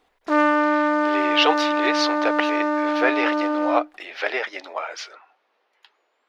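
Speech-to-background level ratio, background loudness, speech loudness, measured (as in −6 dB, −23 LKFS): −3.5 dB, −21.5 LKFS, −25.0 LKFS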